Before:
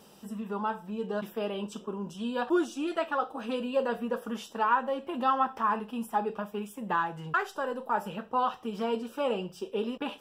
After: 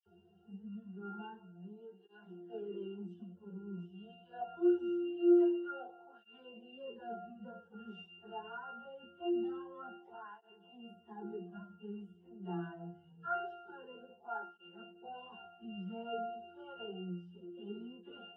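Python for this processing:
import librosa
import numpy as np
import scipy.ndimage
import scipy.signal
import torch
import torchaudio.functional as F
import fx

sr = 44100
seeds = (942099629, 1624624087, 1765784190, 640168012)

y = fx.high_shelf(x, sr, hz=5400.0, db=-2.5)
y = fx.octave_resonator(y, sr, note='F', decay_s=0.49)
y = fx.stretch_vocoder_free(y, sr, factor=1.8)
y = fx.peak_eq(y, sr, hz=520.0, db=6.0, octaves=1.6)
y = fx.notch_comb(y, sr, f0_hz=160.0)
y = fx.dispersion(y, sr, late='lows', ms=61.0, hz=2600.0)
y = fx.flanger_cancel(y, sr, hz=0.24, depth_ms=4.1)
y = F.gain(torch.from_numpy(y), 13.0).numpy()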